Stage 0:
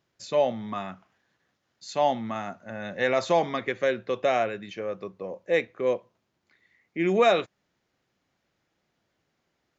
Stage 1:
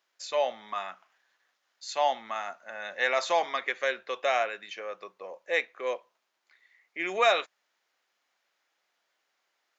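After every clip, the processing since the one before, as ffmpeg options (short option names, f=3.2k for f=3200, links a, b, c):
-af "highpass=810,volume=2dB"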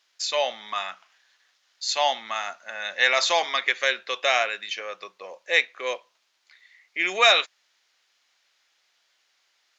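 -af "equalizer=f=4.5k:w=0.43:g=13"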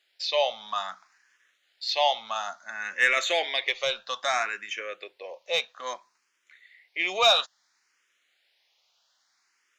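-filter_complex "[0:a]acontrast=78,asplit=2[a][b];[b]afreqshift=0.6[c];[a][c]amix=inputs=2:normalize=1,volume=-6dB"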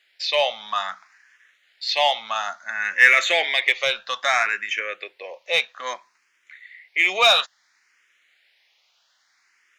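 -filter_complex "[0:a]equalizer=f=2k:w=1.3:g=8.5,asplit=2[a][b];[b]asoftclip=type=hard:threshold=-17.5dB,volume=-9dB[c];[a][c]amix=inputs=2:normalize=0"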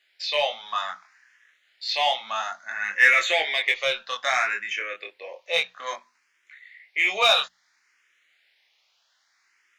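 -af "bandreject=f=60:t=h:w=6,bandreject=f=120:t=h:w=6,bandreject=f=180:t=h:w=6,bandreject=f=240:t=h:w=6,flanger=delay=19:depth=6.3:speed=0.3"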